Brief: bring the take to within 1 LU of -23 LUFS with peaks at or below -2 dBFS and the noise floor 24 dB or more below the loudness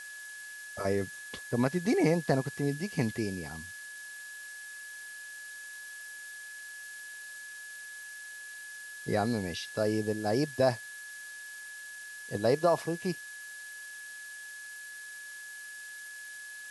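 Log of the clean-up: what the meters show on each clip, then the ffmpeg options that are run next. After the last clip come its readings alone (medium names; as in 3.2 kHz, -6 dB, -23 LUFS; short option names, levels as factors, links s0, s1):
steady tone 1.7 kHz; tone level -43 dBFS; noise floor -45 dBFS; noise floor target -59 dBFS; loudness -34.5 LUFS; peak level -13.0 dBFS; loudness target -23.0 LUFS
-> -af "bandreject=f=1700:w=30"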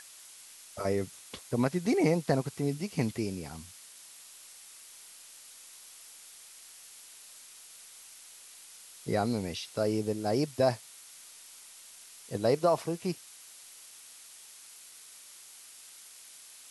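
steady tone not found; noise floor -52 dBFS; noise floor target -55 dBFS
-> -af "afftdn=nr=6:nf=-52"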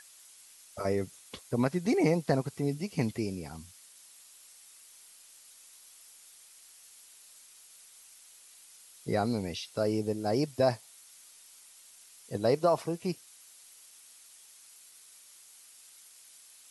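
noise floor -56 dBFS; loudness -31.0 LUFS; peak level -13.5 dBFS; loudness target -23.0 LUFS
-> -af "volume=2.51"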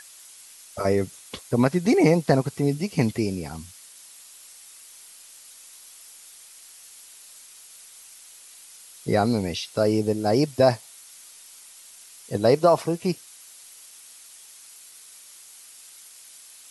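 loudness -23.0 LUFS; peak level -5.5 dBFS; noise floor -48 dBFS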